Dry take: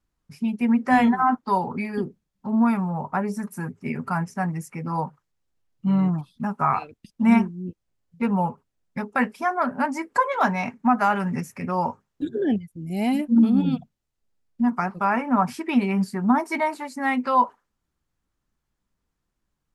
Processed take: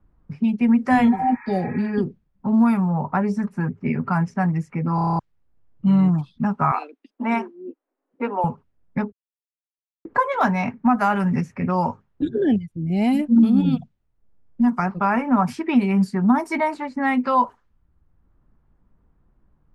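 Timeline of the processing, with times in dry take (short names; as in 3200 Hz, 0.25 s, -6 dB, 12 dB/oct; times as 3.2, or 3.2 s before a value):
1.14–1.86 spectral repair 830–2600 Hz
4.95 stutter in place 0.03 s, 8 plays
6.71–8.44 elliptic high-pass 270 Hz
9.12–10.05 mute
whole clip: low-pass opened by the level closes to 1200 Hz, open at -18 dBFS; low shelf 160 Hz +9.5 dB; three-band squash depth 40%; gain +1 dB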